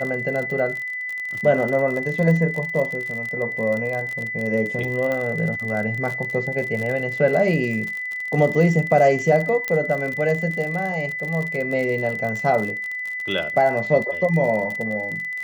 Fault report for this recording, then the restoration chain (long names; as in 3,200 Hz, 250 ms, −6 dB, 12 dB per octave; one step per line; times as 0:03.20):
surface crackle 45 per second −26 dBFS
whistle 2,000 Hz −26 dBFS
0:05.12: click −14 dBFS
0:09.68: click −10 dBFS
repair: click removal
notch filter 2,000 Hz, Q 30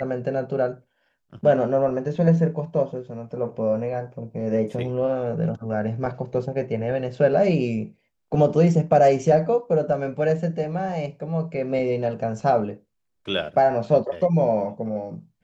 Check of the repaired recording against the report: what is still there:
none of them is left